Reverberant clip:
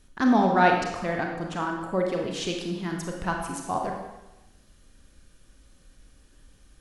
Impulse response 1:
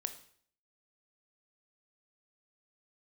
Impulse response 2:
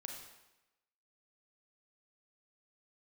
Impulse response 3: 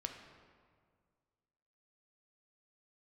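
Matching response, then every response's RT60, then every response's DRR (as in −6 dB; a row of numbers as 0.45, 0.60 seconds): 2; 0.55, 1.0, 1.9 seconds; 8.0, 1.0, 3.5 decibels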